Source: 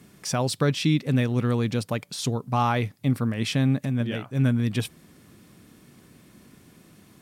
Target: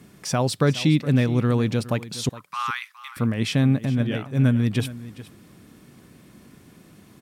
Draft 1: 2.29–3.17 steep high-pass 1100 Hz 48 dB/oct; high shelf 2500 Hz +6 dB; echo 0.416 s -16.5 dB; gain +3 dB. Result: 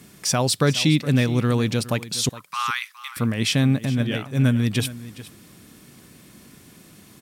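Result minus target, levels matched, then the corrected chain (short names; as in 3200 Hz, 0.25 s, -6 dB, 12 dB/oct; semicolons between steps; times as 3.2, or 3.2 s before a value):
4000 Hz band +5.0 dB
2.29–3.17 steep high-pass 1100 Hz 48 dB/oct; high shelf 2500 Hz -3 dB; echo 0.416 s -16.5 dB; gain +3 dB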